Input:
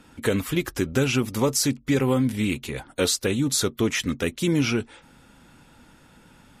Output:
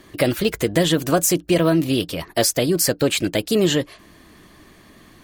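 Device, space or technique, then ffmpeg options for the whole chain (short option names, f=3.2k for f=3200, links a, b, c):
nightcore: -af "asetrate=55566,aresample=44100,volume=4.5dB"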